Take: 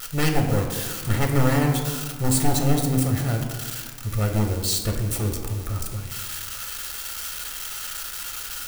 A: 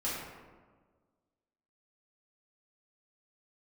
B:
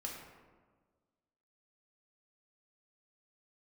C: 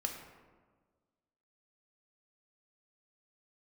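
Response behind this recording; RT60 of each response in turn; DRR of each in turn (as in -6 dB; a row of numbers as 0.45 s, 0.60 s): C; 1.5 s, 1.5 s, 1.5 s; -9.0 dB, -2.0 dB, 2.5 dB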